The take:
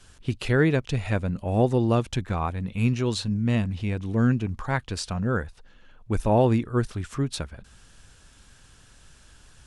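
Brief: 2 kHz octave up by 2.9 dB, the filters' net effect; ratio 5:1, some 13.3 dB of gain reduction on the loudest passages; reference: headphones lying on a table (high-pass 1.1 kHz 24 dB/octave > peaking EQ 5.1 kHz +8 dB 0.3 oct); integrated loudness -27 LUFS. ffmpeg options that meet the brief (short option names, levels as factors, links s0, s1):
-af "equalizer=f=2000:t=o:g=4,acompressor=threshold=0.0282:ratio=5,highpass=f=1100:w=0.5412,highpass=f=1100:w=1.3066,equalizer=f=5100:t=o:w=0.3:g=8,volume=5.62"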